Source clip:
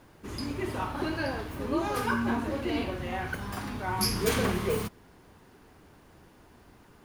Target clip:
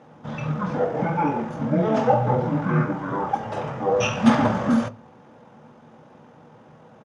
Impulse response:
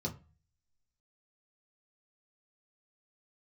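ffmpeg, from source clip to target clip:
-filter_complex "[0:a]equalizer=f=1.4k:w=0.33:g=13.5,asetrate=23361,aresample=44100,atempo=1.88775,highpass=150,lowpass=6.9k,asplit=2[a][b];[1:a]atrim=start_sample=2205[c];[b][c]afir=irnorm=-1:irlink=0,volume=-10.5dB[d];[a][d]amix=inputs=2:normalize=0"

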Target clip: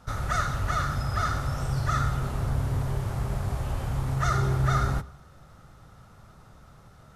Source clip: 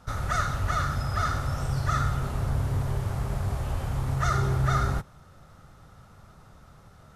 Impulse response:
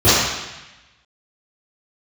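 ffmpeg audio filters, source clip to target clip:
-filter_complex "[0:a]asplit=2[a][b];[1:a]atrim=start_sample=2205[c];[b][c]afir=irnorm=-1:irlink=0,volume=-48dB[d];[a][d]amix=inputs=2:normalize=0"

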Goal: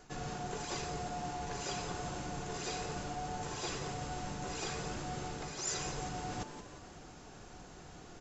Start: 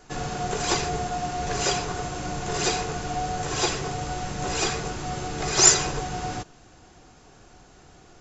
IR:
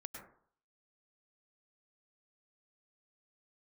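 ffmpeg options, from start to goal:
-filter_complex "[0:a]equalizer=f=180:t=o:w=0.77:g=2.5,areverse,acompressor=threshold=-37dB:ratio=5,areverse,asplit=6[a][b][c][d][e][f];[b]adelay=174,afreqshift=140,volume=-10dB[g];[c]adelay=348,afreqshift=280,volume=-17.3dB[h];[d]adelay=522,afreqshift=420,volume=-24.7dB[i];[e]adelay=696,afreqshift=560,volume=-32dB[j];[f]adelay=870,afreqshift=700,volume=-39.3dB[k];[a][g][h][i][j][k]amix=inputs=6:normalize=0,volume=-1.5dB"

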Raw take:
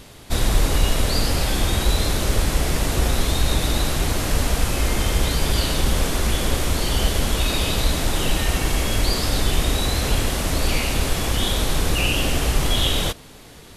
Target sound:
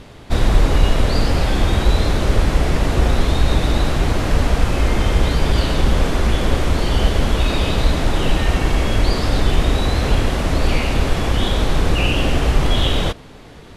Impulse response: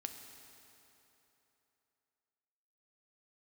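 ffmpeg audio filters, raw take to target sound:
-af "aemphasis=mode=reproduction:type=75fm,volume=4dB"

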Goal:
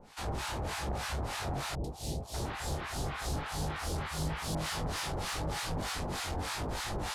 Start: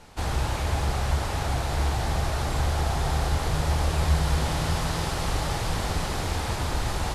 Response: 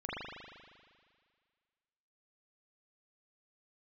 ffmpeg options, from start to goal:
-filter_complex "[0:a]lowshelf=f=78:g=-6,bandreject=f=50:t=h:w=6,bandreject=f=100:t=h:w=6,bandreject=f=150:t=h:w=6,acrossover=split=910[a][b];[a]aeval=exprs='val(0)*(1-1/2+1/2*cos(2*PI*3.3*n/s))':c=same[c];[b]aeval=exprs='val(0)*(1-1/2-1/2*cos(2*PI*3.3*n/s))':c=same[d];[c][d]amix=inputs=2:normalize=0,flanger=delay=19:depth=2.3:speed=0.89,asoftclip=type=tanh:threshold=-32dB,asettb=1/sr,asplit=3[e][f][g];[e]atrim=end=1.754[h];[f]atrim=start=1.75:end=4.55,asetpts=PTS-STARTPTS,afade=t=in:d=0.004:c=qsin,afade=t=out:st=2.796:d=0.004:c=qsin,acrossover=split=680|3400[i][j][k];[k]adelay=90[l];[j]adelay=590[m];[i][m][l]amix=inputs=3:normalize=0,atrim=end_sample=123480[n];[g]atrim=start=4.546[o];[h][n]acrossfade=d=0.004:c1=hsin:c2=qsin[p];[p][o]acrossfade=d=0.004:c1=qsin:c2=hsin,volume=3.5dB"

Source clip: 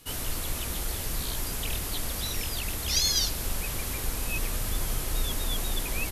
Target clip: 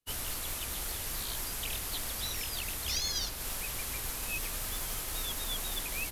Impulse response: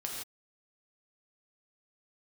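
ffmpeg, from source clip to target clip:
-filter_complex "[0:a]acrusher=bits=5:mode=log:mix=0:aa=0.000001,acrossover=split=110|270|680|2300[a][b][c][d][e];[a]acompressor=threshold=-40dB:ratio=4[f];[b]acompressor=threshold=-54dB:ratio=4[g];[c]acompressor=threshold=-53dB:ratio=4[h];[d]acompressor=threshold=-44dB:ratio=4[i];[e]acompressor=threshold=-33dB:ratio=4[j];[f][g][h][i][j]amix=inputs=5:normalize=0,agate=range=-33dB:threshold=-33dB:ratio=3:detection=peak"

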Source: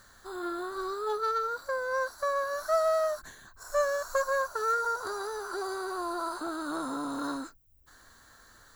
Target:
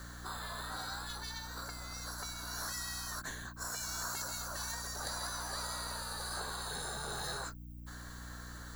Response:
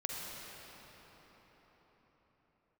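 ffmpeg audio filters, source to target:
-filter_complex "[0:a]aeval=exprs='val(0)+0.00224*(sin(2*PI*60*n/s)+sin(2*PI*2*60*n/s)/2+sin(2*PI*3*60*n/s)/3+sin(2*PI*4*60*n/s)/4+sin(2*PI*5*60*n/s)/5)':c=same,acrossover=split=300|3000[a][b][c];[b]acompressor=threshold=-31dB:ratio=6[d];[a][d][c]amix=inputs=3:normalize=0,afftfilt=real='re*lt(hypot(re,im),0.0282)':imag='im*lt(hypot(re,im),0.0282)':win_size=1024:overlap=0.75,volume=6dB"

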